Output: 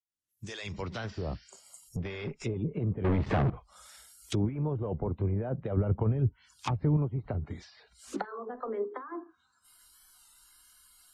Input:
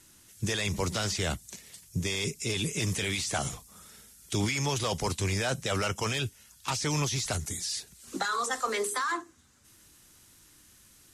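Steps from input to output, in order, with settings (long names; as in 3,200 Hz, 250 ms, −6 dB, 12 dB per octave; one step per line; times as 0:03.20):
fade in at the beginning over 1.92 s
0:01.89–0:02.44: tube saturation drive 29 dB, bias 0.55
treble cut that deepens with the level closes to 500 Hz, closed at −27.5 dBFS
0:01.14–0:01.82: healed spectral selection 1,400–6,500 Hz both
0:03.05–0:03.50: leveller curve on the samples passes 5
noise reduction from a noise print of the clip's start 21 dB
0:05.77–0:06.97: low-shelf EQ 180 Hz +10.5 dB
treble cut that deepens with the level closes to 2,600 Hz, closed at −27 dBFS
wow of a warped record 33 1/3 rpm, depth 100 cents
level +1 dB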